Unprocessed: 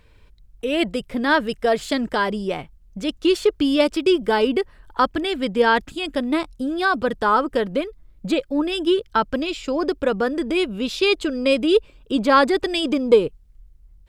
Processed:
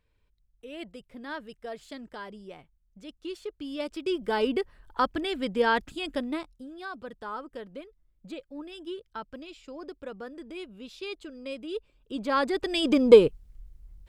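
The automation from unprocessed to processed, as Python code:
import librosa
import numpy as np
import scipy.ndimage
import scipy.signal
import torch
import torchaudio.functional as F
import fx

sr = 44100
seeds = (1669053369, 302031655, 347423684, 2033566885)

y = fx.gain(x, sr, db=fx.line((3.57, -19.5), (4.44, -7.0), (6.17, -7.0), (6.68, -19.0), (11.67, -19.0), (12.64, -7.5), (13.02, 0.5)))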